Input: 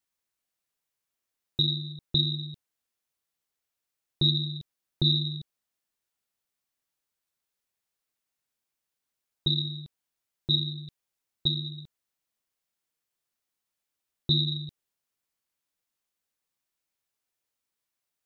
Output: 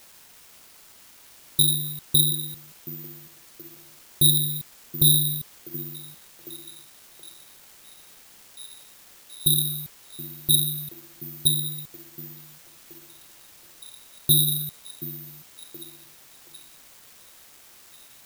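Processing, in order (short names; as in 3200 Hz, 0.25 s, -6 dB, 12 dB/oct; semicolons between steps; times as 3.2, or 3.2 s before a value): in parallel at -4.5 dB: requantised 8-bit, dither triangular; on the sum: delay with a stepping band-pass 0.726 s, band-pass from 260 Hz, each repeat 0.7 oct, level -6 dB; careless resampling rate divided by 3×, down none, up zero stuff; gain -3 dB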